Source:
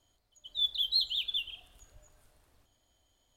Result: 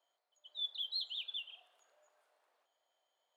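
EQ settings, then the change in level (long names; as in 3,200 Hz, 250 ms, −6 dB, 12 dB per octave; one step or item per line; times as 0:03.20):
high-pass filter 540 Hz 24 dB per octave
low-pass filter 1,500 Hz 6 dB per octave
−1.5 dB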